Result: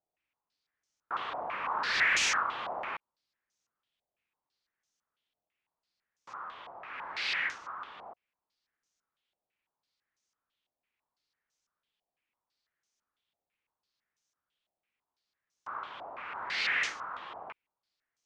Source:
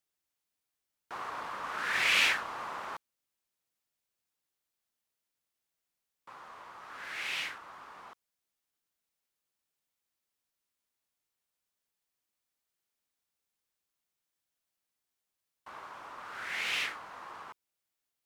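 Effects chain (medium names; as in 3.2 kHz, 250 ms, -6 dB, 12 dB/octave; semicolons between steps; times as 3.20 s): hard clipper -28.5 dBFS, distortion -8 dB; step-sequenced low-pass 6 Hz 710–6200 Hz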